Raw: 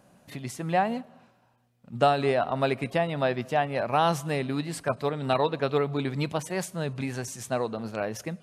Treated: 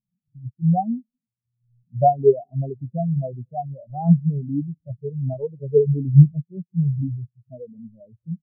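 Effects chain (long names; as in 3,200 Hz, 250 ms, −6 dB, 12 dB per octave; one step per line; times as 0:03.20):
converter with a step at zero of −35.5 dBFS
spectral tilt −3.5 dB per octave
on a send: single-tap delay 174 ms −17 dB
on the sum: every bin expanded away from the loudest bin 4 to 1
level +6 dB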